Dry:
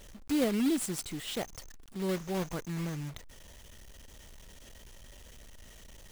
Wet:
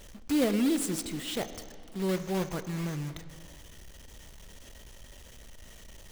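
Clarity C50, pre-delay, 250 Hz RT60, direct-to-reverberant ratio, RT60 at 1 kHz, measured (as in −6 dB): 12.0 dB, 8 ms, 2.3 s, 10.5 dB, 2.4 s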